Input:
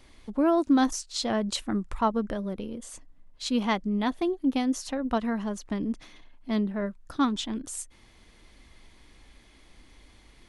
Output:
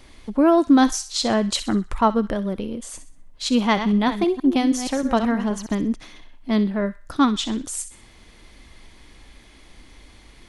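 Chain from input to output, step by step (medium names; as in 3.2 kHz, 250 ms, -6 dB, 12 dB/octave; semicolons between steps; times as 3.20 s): 3.61–5.75 s: chunks repeated in reverse 158 ms, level -9 dB; feedback echo behind a high-pass 63 ms, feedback 38%, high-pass 1.6 kHz, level -11.5 dB; trim +7 dB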